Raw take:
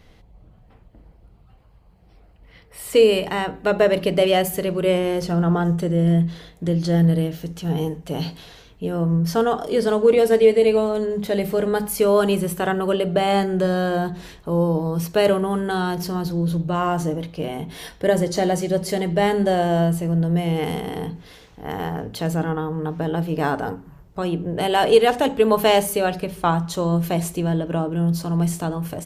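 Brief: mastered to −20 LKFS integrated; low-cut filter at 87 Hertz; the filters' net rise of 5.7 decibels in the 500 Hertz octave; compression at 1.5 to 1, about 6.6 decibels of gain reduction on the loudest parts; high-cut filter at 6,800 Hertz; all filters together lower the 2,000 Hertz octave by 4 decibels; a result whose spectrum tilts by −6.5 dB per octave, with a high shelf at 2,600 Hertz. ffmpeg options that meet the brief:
ffmpeg -i in.wav -af "highpass=87,lowpass=6800,equalizer=frequency=500:width_type=o:gain=7,equalizer=frequency=2000:width_type=o:gain=-8,highshelf=frequency=2600:gain=4.5,acompressor=threshold=-22dB:ratio=1.5,volume=1dB" out.wav

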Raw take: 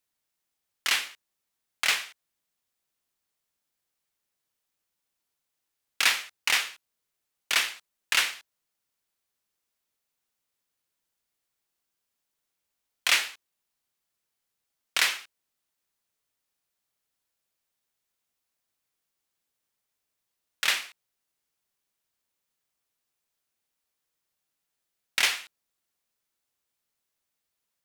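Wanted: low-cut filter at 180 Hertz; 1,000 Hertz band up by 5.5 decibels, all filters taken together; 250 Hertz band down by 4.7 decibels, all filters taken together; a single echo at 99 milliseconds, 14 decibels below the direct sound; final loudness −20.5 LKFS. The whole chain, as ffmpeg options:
ffmpeg -i in.wav -af "highpass=180,equalizer=frequency=250:width_type=o:gain=-6,equalizer=frequency=1000:width_type=o:gain=7.5,aecho=1:1:99:0.2,volume=4.5dB" out.wav

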